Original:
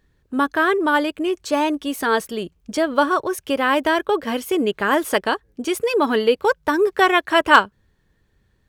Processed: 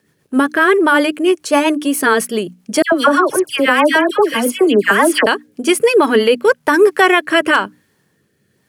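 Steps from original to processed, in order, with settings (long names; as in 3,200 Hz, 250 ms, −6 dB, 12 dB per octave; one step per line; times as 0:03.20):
high-pass filter 130 Hz 24 dB per octave
parametric band 9,900 Hz +10.5 dB 0.31 octaves
notch filter 3,700 Hz, Q 7.6
dynamic equaliser 2,000 Hz, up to +4 dB, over −32 dBFS, Q 1
mains-hum notches 60/120/180/240/300 Hz
bit reduction 12 bits
0:02.82–0:05.26: all-pass dispersion lows, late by 101 ms, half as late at 1,700 Hz
rotating-speaker cabinet horn 7.5 Hz, later 1 Hz, at 0:05.64
boost into a limiter +10.5 dB
level −1 dB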